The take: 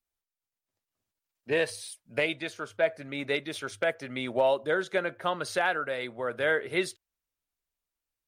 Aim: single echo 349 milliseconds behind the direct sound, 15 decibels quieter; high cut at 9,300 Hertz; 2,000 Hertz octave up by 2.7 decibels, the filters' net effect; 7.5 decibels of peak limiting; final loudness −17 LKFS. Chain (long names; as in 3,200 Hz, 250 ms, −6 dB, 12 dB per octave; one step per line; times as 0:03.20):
low-pass filter 9,300 Hz
parametric band 2,000 Hz +3.5 dB
brickwall limiter −19.5 dBFS
single-tap delay 349 ms −15 dB
level +15 dB